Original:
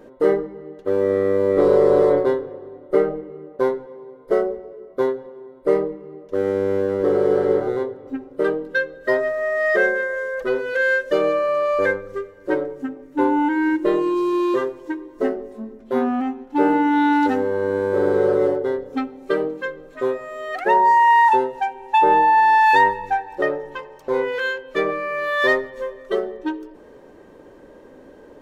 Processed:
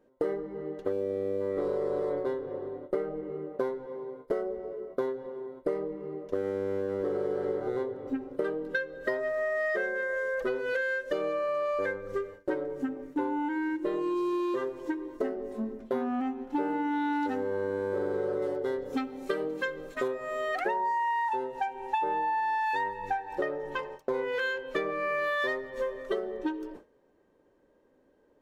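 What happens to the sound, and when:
0.92–1.41 s: time-frequency box 840–2200 Hz -10 dB
18.42–20.08 s: treble shelf 2.5 kHz +8 dB
whole clip: gate with hold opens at -32 dBFS; compression 12:1, threshold -27 dBFS

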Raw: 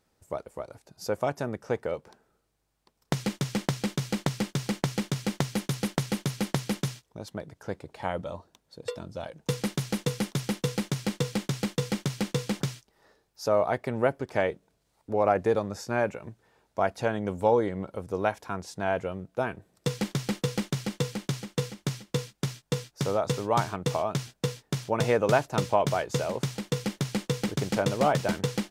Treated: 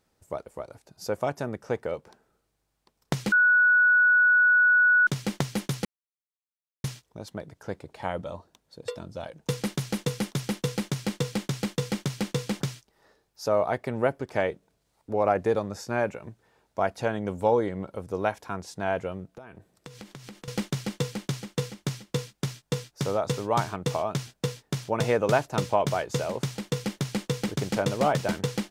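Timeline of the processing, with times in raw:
3.32–5.07 s: bleep 1.47 kHz -16 dBFS
5.85–6.84 s: mute
19.34–20.48 s: compression 12:1, threshold -40 dBFS

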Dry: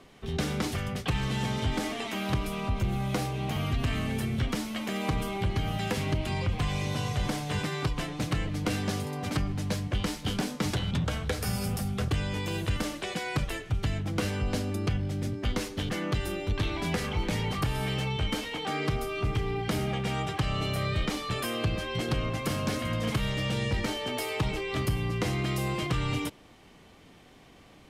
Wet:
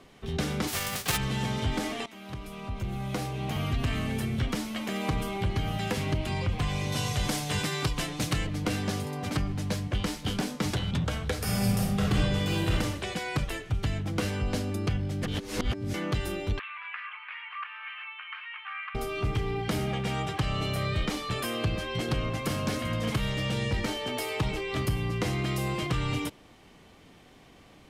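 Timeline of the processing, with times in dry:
0.67–1.16 s: formants flattened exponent 0.3
2.06–3.61 s: fade in, from -16.5 dB
6.92–8.47 s: treble shelf 3.3 kHz +9 dB
11.43–12.74 s: reverb throw, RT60 0.89 s, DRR -2.5 dB
15.23–15.94 s: reverse
16.59–18.95 s: elliptic band-pass 1.1–2.7 kHz, stop band 60 dB

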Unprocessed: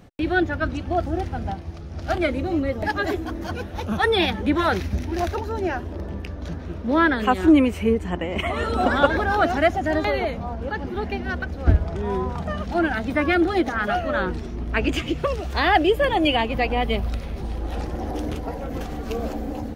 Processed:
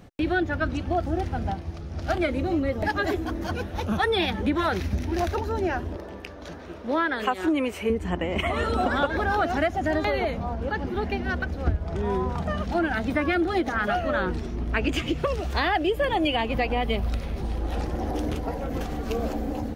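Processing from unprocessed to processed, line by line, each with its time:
5.96–7.90 s: tone controls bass -14 dB, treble 0 dB
whole clip: compression 6:1, threshold -20 dBFS

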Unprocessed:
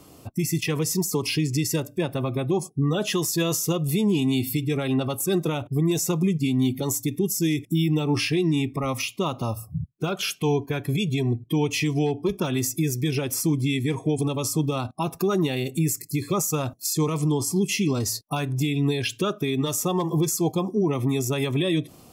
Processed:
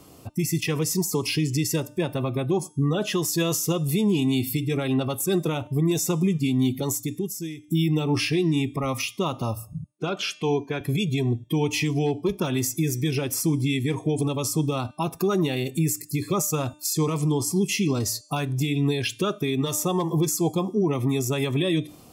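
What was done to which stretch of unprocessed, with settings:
2.77–3.25 s: treble shelf 4.5 kHz -5 dB
6.84–7.68 s: fade out, to -21 dB
9.73–10.81 s: band-pass 170–6100 Hz
whole clip: de-hum 300.3 Hz, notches 35

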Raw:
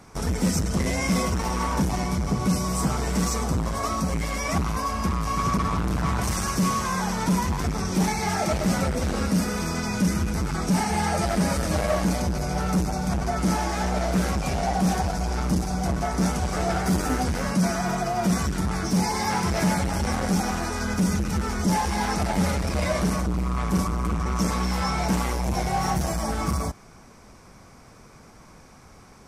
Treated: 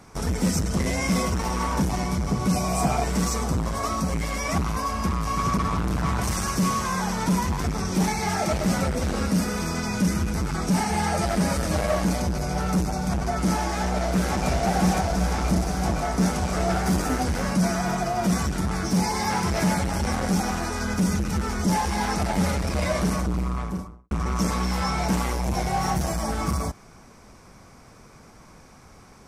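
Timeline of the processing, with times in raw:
2.54–3.04 s: small resonant body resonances 710/2400 Hz, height 16 dB
13.78–14.47 s: echo throw 510 ms, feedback 80%, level -2.5 dB
23.35–24.11 s: studio fade out

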